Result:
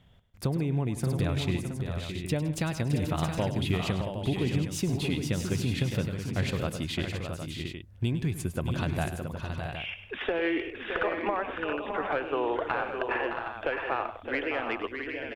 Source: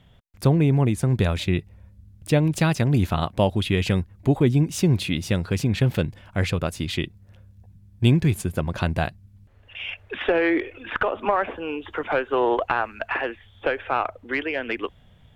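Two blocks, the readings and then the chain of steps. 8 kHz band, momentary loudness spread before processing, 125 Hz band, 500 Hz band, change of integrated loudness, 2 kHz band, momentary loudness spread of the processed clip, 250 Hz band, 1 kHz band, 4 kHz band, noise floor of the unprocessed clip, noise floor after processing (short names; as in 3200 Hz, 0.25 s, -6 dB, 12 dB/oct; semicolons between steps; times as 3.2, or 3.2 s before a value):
-4.0 dB, 10 LU, -7.5 dB, -6.5 dB, -7.0 dB, -5.0 dB, 6 LU, -7.0 dB, -6.0 dB, -5.0 dB, -54 dBFS, -47 dBFS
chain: compressor, threshold -20 dBFS, peak gain reduction 8 dB; on a send: tapped delay 0.102/0.163/0.615/0.673/0.764 s -12.5/-17/-7.5/-8/-9.5 dB; on the sum: gain -5 dB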